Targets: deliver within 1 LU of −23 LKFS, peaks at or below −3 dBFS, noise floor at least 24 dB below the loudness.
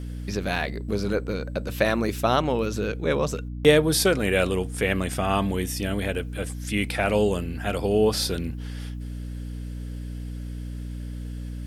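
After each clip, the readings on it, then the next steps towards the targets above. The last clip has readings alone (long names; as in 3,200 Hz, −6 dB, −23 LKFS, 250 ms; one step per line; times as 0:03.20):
mains hum 60 Hz; hum harmonics up to 300 Hz; level of the hum −31 dBFS; integrated loudness −25.0 LKFS; sample peak −3.0 dBFS; target loudness −23.0 LKFS
→ hum removal 60 Hz, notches 5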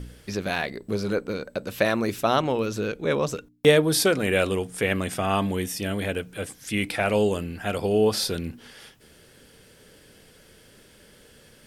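mains hum none found; integrated loudness −25.0 LKFS; sample peak −3.5 dBFS; target loudness −23.0 LKFS
→ level +2 dB
brickwall limiter −3 dBFS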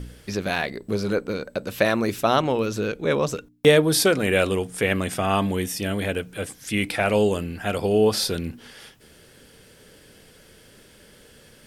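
integrated loudness −23.0 LKFS; sample peak −3.0 dBFS; background noise floor −52 dBFS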